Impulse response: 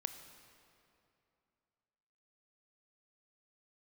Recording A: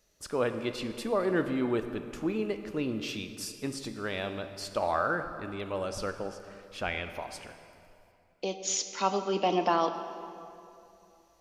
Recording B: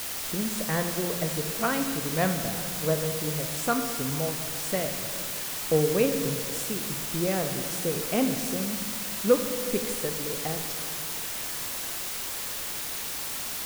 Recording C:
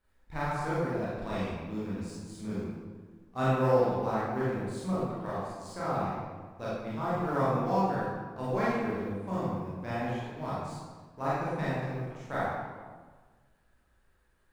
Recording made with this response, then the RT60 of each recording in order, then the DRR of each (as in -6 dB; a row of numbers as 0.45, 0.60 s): A; 2.7, 2.0, 1.5 s; 8.0, 6.5, -10.0 dB